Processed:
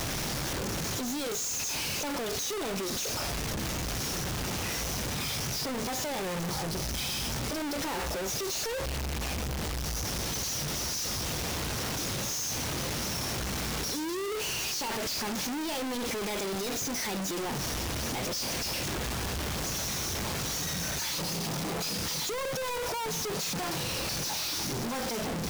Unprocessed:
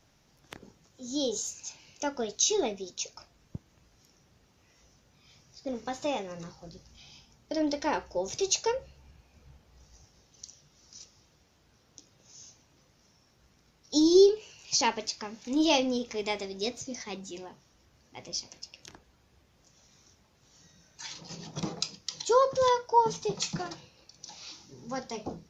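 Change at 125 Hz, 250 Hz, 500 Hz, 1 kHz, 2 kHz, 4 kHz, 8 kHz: +12.5 dB, -2.0 dB, -5.0 dB, -3.0 dB, +7.0 dB, +4.0 dB, no reading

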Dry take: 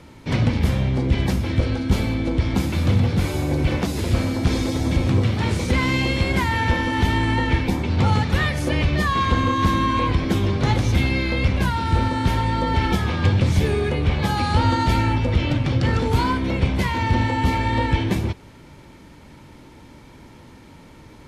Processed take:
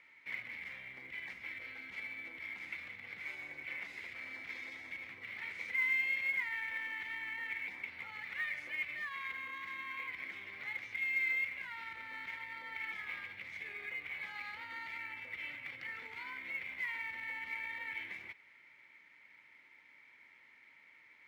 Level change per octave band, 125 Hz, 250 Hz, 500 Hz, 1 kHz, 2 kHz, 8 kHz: under -40 dB, under -40 dB, -35.0 dB, -27.0 dB, -8.5 dB, under -25 dB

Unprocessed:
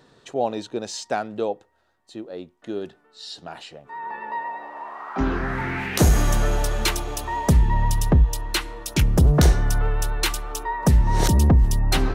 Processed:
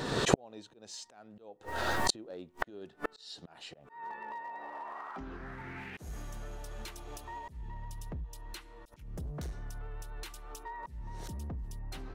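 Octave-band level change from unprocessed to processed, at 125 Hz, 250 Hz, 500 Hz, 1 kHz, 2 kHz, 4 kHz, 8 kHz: -22.0 dB, -16.5 dB, -13.0 dB, -12.5 dB, -11.0 dB, -11.0 dB, -13.0 dB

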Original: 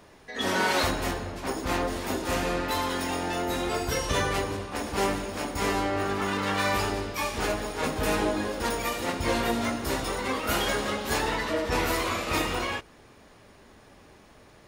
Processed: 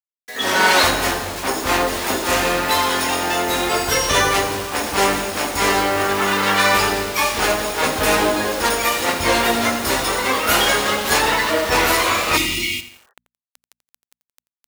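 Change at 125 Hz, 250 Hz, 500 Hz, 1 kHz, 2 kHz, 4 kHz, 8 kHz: +3.5 dB, +5.5 dB, +8.5 dB, +10.5 dB, +12.0 dB, +12.5 dB, +13.5 dB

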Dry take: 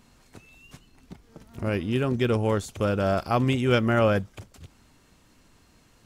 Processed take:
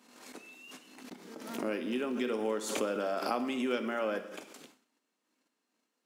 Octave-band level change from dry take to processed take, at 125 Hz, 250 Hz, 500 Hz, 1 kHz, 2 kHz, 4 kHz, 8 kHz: under -25 dB, -8.5 dB, -8.0 dB, -8.0 dB, -8.0 dB, -6.5 dB, +1.0 dB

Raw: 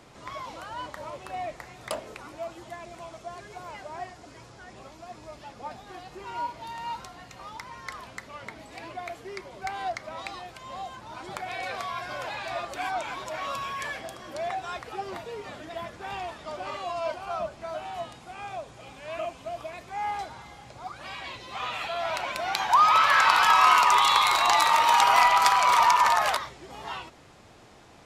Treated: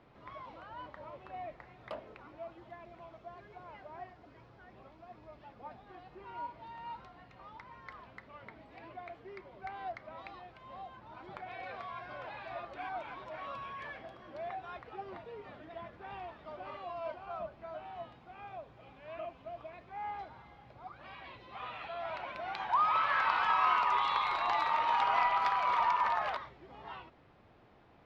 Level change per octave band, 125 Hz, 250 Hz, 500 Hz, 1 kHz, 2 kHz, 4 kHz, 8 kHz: -8.0 dB, -8.5 dB, -9.0 dB, -9.5 dB, -11.0 dB, -16.0 dB, under -30 dB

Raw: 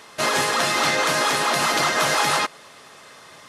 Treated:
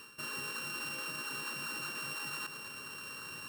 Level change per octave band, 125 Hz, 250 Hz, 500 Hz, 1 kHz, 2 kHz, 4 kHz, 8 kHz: -17.5 dB, -19.0 dB, -26.5 dB, -24.5 dB, -17.5 dB, -18.0 dB, -18.5 dB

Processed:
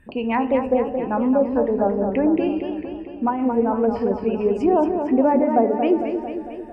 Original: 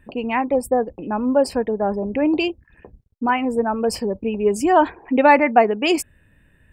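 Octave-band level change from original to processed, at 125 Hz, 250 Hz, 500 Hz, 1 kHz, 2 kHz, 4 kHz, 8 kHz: +1.5 dB, +2.0 dB, 0.0 dB, -4.0 dB, -11.0 dB, under -10 dB, under -25 dB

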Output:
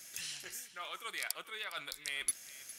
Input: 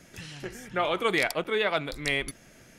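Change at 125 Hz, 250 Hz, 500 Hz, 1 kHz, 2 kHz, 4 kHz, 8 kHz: -27.0 dB, -27.0 dB, -25.0 dB, -15.5 dB, -12.5 dB, -8.0 dB, +3.5 dB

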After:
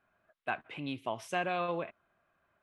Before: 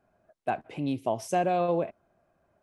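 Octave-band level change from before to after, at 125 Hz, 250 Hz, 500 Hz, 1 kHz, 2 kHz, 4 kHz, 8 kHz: -9.0 dB, -9.0 dB, -9.0 dB, -6.5 dB, +3.0 dB, +1.5 dB, -9.0 dB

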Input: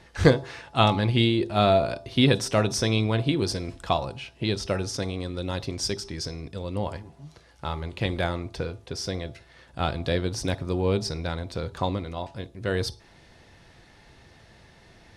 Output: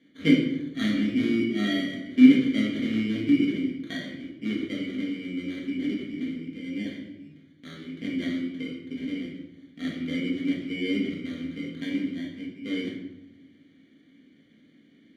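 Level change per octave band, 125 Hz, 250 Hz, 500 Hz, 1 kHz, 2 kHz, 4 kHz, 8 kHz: -11.5 dB, +5.5 dB, -10.5 dB, under -20 dB, -1.5 dB, -6.5 dB, under -15 dB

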